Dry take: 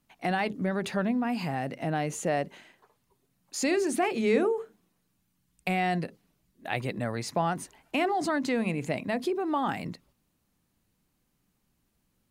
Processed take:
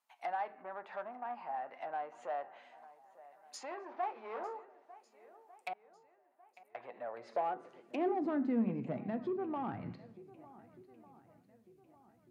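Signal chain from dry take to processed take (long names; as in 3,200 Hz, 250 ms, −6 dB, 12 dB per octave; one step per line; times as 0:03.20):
0:03.89–0:04.60: variable-slope delta modulation 32 kbit/s
on a send at −12 dB: parametric band 780 Hz −11.5 dB 1.2 octaves + convolution reverb RT60 1.1 s, pre-delay 5 ms
on the sum: treble cut that deepens with the level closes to 1,200 Hz, closed at −27.5 dBFS
flanger 1.7 Hz, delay 7.7 ms, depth 1.1 ms, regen +69%
0:05.73–0:06.75: inverse Chebyshev band-stop filter 270–4,400 Hz, stop band 50 dB
feedback echo with a long and a short gap by turns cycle 1,499 ms, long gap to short 1.5 to 1, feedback 37%, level −20.5 dB
soft clipping −26 dBFS, distortion −17 dB
high-pass filter sweep 830 Hz → 85 Hz, 0:06.77–0:09.95
level −4.5 dB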